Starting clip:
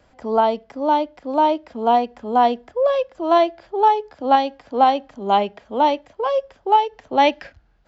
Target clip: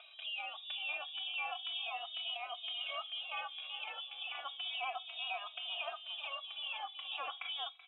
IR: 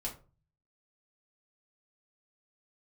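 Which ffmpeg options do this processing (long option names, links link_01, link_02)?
-filter_complex "[0:a]aecho=1:1:381|762|1143:0.119|0.0499|0.021,asplit=2[link_01][link_02];[1:a]atrim=start_sample=2205,atrim=end_sample=3528[link_03];[link_02][link_03]afir=irnorm=-1:irlink=0,volume=-16.5dB[link_04];[link_01][link_04]amix=inputs=2:normalize=0,lowpass=frequency=3300:width_type=q:width=0.5098,lowpass=frequency=3300:width_type=q:width=0.6013,lowpass=frequency=3300:width_type=q:width=0.9,lowpass=frequency=3300:width_type=q:width=2.563,afreqshift=-3900,afftfilt=real='re*lt(hypot(re,im),0.224)':imag='im*lt(hypot(re,im),0.224)':win_size=1024:overlap=0.75,tiltshelf=frequency=970:gain=-4.5,acompressor=mode=upward:threshold=-45dB:ratio=2.5,asplit=3[link_05][link_06][link_07];[link_05]bandpass=frequency=730:width_type=q:width=8,volume=0dB[link_08];[link_06]bandpass=frequency=1090:width_type=q:width=8,volume=-6dB[link_09];[link_07]bandpass=frequency=2440:width_type=q:width=8,volume=-9dB[link_10];[link_08][link_09][link_10]amix=inputs=3:normalize=0,acompressor=threshold=-47dB:ratio=6,asplit=2[link_11][link_12];[link_12]adelay=2.8,afreqshift=-0.33[link_13];[link_11][link_13]amix=inputs=2:normalize=1,volume=12dB"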